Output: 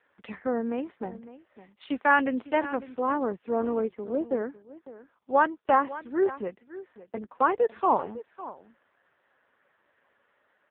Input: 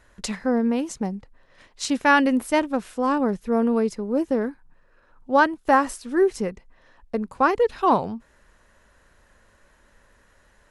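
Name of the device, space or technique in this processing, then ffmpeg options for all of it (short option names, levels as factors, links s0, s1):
satellite phone: -filter_complex "[0:a]asettb=1/sr,asplit=3[s0][s1][s2];[s0]atrim=end=6.314[s3];[s1]atrim=start=6.31:end=7.21,asetpts=PTS-STARTPTS,afade=t=in:d=0.004:c=qsin,afade=t=out:st=0.896:d=0.004:c=qsin,bandreject=f=450:w=12[s4];[s2]atrim=start=7.206[s5];[s3][s4]acrossfade=d=0.004:c1=hsin:c2=qsin[s6];[s6][s5]acrossfade=d=0.004:c1=qsin:c2=hsin,highpass=310,lowpass=3200,aecho=1:1:554:0.158,volume=0.708" -ar 8000 -c:a libopencore_amrnb -b:a 5150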